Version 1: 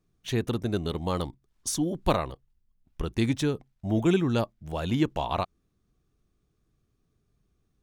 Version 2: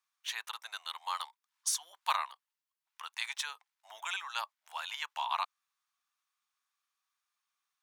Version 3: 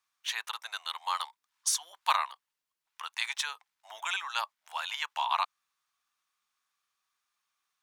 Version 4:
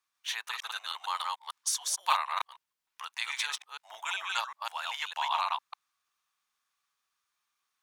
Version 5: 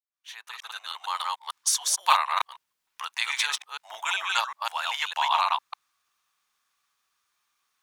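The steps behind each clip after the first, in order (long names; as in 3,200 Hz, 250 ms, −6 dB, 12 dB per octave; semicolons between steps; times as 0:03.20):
elliptic high-pass filter 920 Hz, stop band 70 dB
high-shelf EQ 11,000 Hz −4 dB; level +4.5 dB
delay that plays each chunk backwards 151 ms, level −1.5 dB; level −2 dB
fade in at the beginning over 1.69 s; level +6.5 dB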